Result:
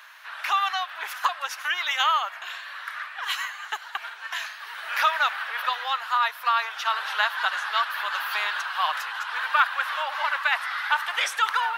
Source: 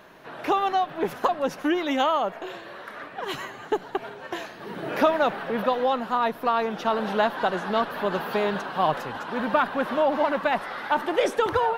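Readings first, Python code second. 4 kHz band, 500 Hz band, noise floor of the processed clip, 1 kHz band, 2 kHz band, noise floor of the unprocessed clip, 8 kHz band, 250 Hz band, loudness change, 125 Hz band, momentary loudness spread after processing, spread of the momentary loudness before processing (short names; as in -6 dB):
+7.0 dB, -18.0 dB, -42 dBFS, -0.5 dB, +6.5 dB, -43 dBFS, n/a, under -40 dB, -0.5 dB, under -40 dB, 12 LU, 12 LU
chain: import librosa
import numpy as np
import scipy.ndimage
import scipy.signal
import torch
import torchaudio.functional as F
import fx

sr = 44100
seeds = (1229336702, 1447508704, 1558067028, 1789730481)

y = scipy.signal.sosfilt(scipy.signal.butter(4, 1200.0, 'highpass', fs=sr, output='sos'), x)
y = F.gain(torch.from_numpy(y), 7.0).numpy()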